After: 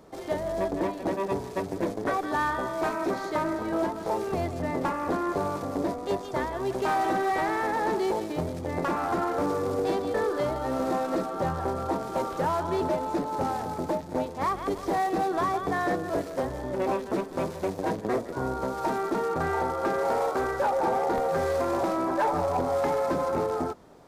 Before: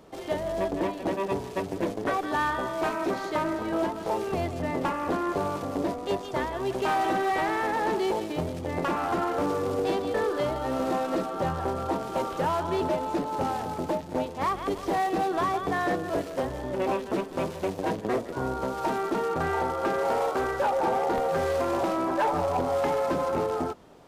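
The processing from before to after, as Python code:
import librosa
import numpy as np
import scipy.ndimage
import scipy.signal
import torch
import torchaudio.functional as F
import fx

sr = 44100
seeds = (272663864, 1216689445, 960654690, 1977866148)

y = fx.peak_eq(x, sr, hz=2900.0, db=-6.5, octaves=0.51)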